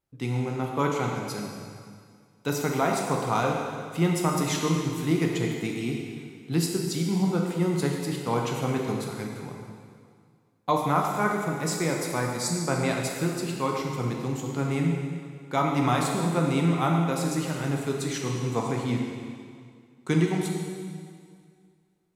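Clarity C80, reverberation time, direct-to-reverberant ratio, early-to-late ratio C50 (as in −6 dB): 3.0 dB, 2.1 s, −0.5 dB, 1.5 dB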